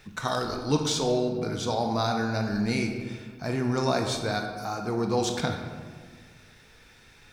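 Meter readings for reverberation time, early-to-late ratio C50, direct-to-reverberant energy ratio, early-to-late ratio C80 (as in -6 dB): 1.6 s, 5.0 dB, 3.5 dB, 7.0 dB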